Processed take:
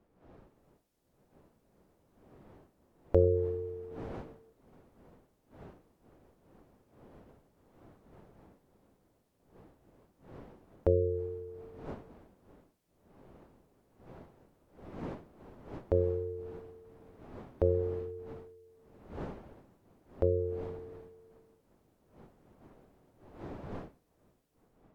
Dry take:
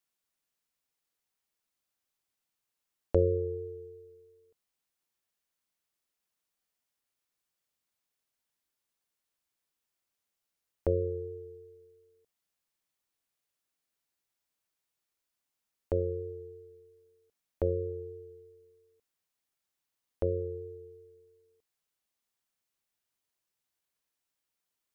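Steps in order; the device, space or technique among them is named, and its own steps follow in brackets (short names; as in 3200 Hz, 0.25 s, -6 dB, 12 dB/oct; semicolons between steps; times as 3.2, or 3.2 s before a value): smartphone video outdoors (wind noise 470 Hz -54 dBFS; AGC gain up to 10 dB; gain -8 dB; AAC 96 kbps 48000 Hz)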